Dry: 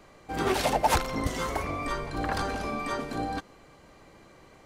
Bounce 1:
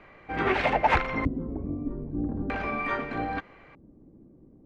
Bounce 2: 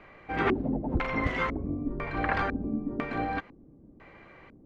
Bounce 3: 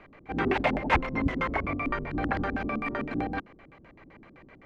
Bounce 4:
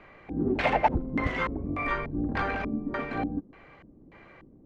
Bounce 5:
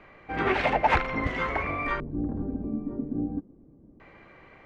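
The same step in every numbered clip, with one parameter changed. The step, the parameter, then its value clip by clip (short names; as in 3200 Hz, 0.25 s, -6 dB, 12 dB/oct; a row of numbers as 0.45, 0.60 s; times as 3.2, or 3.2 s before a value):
LFO low-pass, rate: 0.4, 1, 7.8, 1.7, 0.25 Hz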